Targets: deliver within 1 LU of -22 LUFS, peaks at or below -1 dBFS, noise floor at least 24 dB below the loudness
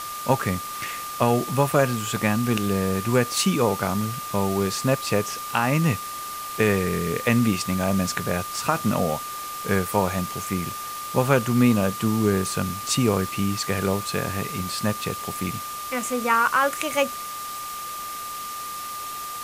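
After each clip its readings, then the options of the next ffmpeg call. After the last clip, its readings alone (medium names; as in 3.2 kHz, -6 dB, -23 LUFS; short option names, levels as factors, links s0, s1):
steady tone 1.2 kHz; tone level -32 dBFS; noise floor -33 dBFS; noise floor target -48 dBFS; loudness -24.0 LUFS; peak level -5.5 dBFS; loudness target -22.0 LUFS
-> -af "bandreject=f=1200:w=30"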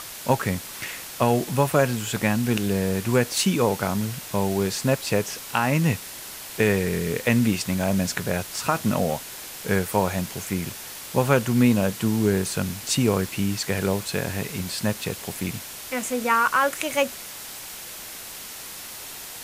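steady tone not found; noise floor -38 dBFS; noise floor target -48 dBFS
-> -af "afftdn=nr=10:nf=-38"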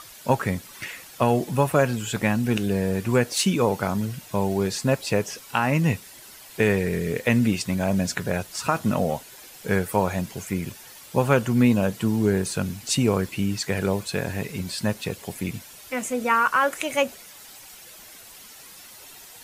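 noise floor -45 dBFS; noise floor target -49 dBFS
-> -af "afftdn=nr=6:nf=-45"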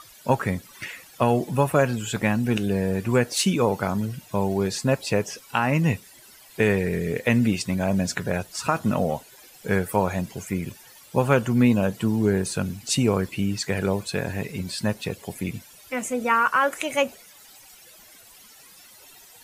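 noise floor -50 dBFS; loudness -24.5 LUFS; peak level -6.0 dBFS; loudness target -22.0 LUFS
-> -af "volume=1.33"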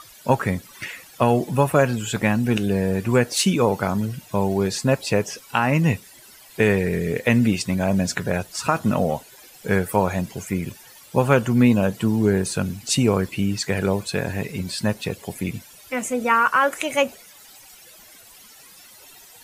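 loudness -22.0 LUFS; peak level -4.0 dBFS; noise floor -47 dBFS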